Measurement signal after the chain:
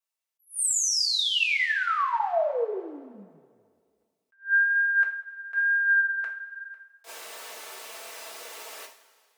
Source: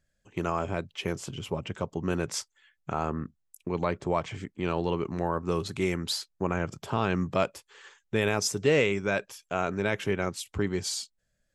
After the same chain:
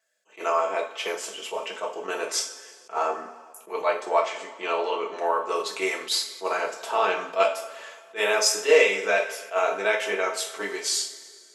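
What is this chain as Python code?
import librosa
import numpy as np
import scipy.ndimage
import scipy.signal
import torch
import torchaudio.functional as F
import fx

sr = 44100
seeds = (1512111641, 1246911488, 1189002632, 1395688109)

y = fx.vibrato(x, sr, rate_hz=1.1, depth_cents=12.0)
y = scipy.signal.sosfilt(scipy.signal.butter(4, 460.0, 'highpass', fs=sr, output='sos'), y)
y = y + 0.4 * np.pad(y, (int(4.5 * sr / 1000.0), 0))[:len(y)]
y = fx.rev_double_slope(y, sr, seeds[0], early_s=0.36, late_s=2.0, knee_db=-17, drr_db=-1.0)
y = fx.attack_slew(y, sr, db_per_s=280.0)
y = F.gain(torch.from_numpy(y), 3.0).numpy()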